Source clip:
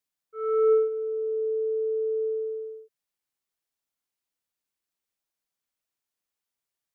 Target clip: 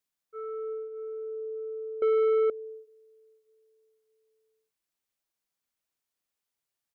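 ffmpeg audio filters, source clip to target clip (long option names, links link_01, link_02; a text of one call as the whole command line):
ffmpeg -i in.wav -filter_complex "[0:a]acompressor=threshold=-37dB:ratio=4,aecho=1:1:610|1220|1830:0.141|0.0494|0.0173,asettb=1/sr,asplit=3[link_01][link_02][link_03];[link_01]atrim=end=2.024[link_04];[link_02]atrim=start=2.02:end=2.5,asetpts=PTS-STARTPTS,afade=type=in:duration=0.004:curve=qsin,afade=type=out:start_time=0.476:duration=0.004:curve=qsin,asplit=2[link_05][link_06];[link_06]highpass=frequency=720:poles=1,volume=35dB,asoftclip=type=tanh:threshold=-15.5dB[link_07];[link_05][link_07]amix=inputs=2:normalize=0,lowpass=frequency=1000:poles=1,volume=-6dB[link_08];[link_03]atrim=start=2.496[link_09];[link_04][link_08]acrossfade=duration=0.004:curve1=hsin:curve2=qsin[link_10];[link_10][link_09]acrossfade=duration=0.004:curve1=qsin:curve2=hsin" out.wav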